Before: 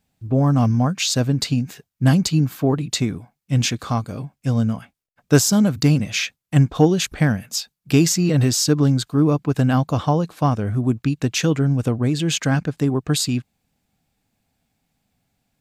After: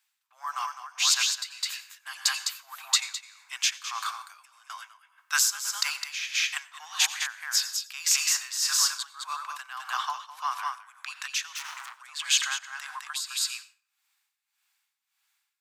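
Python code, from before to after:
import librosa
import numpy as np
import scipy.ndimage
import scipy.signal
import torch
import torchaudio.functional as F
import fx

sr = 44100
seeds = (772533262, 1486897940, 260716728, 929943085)

y = x + 10.0 ** (-4.0 / 20.0) * np.pad(x, (int(208 * sr / 1000.0), 0))[:len(x)]
y = fx.over_compress(y, sr, threshold_db=-29.0, ratio=-1.0, at=(3.99, 4.7))
y = fx.overload_stage(y, sr, gain_db=24.5, at=(11.52, 12.0))
y = scipy.signal.sosfilt(scipy.signal.butter(8, 1000.0, 'highpass', fs=sr, output='sos'), y)
y = fx.room_flutter(y, sr, wall_m=5.9, rt60_s=0.21, at=(8.23, 9.0))
y = fx.rev_plate(y, sr, seeds[0], rt60_s=0.74, hf_ratio=0.65, predelay_ms=75, drr_db=12.5)
y = y * (1.0 - 0.78 / 2.0 + 0.78 / 2.0 * np.cos(2.0 * np.pi * 1.7 * (np.arange(len(y)) / sr)))
y = F.gain(torch.from_numpy(y), 1.5).numpy()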